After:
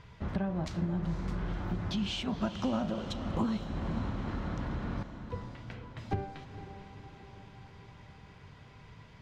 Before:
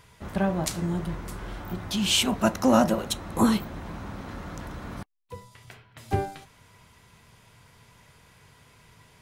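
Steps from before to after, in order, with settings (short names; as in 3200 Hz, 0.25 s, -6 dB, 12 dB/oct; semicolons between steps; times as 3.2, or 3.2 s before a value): tone controls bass +5 dB, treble +4 dB; compressor 5:1, threshold -30 dBFS, peak gain reduction 15.5 dB; air absorption 200 m; on a send: diffused feedback echo 0.496 s, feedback 59%, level -10.5 dB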